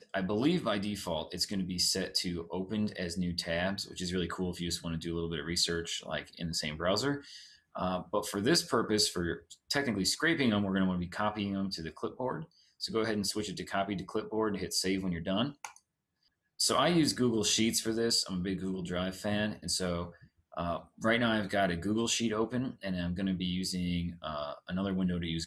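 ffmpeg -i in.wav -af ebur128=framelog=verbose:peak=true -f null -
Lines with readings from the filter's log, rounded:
Integrated loudness:
  I:         -32.1 LUFS
  Threshold: -42.4 LUFS
Loudness range:
  LRA:         4.3 LU
  Threshold: -52.4 LUFS
  LRA low:   -34.4 LUFS
  LRA high:  -30.1 LUFS
True peak:
  Peak:      -15.0 dBFS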